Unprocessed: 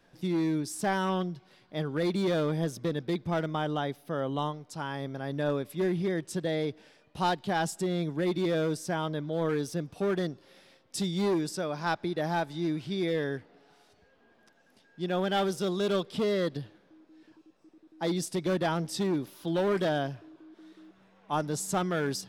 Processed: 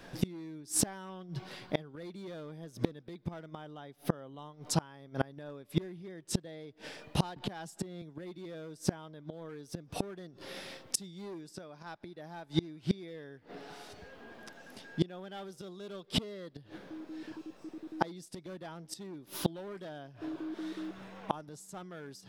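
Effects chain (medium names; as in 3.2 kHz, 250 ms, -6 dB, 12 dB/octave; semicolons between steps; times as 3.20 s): inverted gate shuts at -26 dBFS, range -29 dB; 7.36–8.02 s: three bands compressed up and down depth 70%; trim +12.5 dB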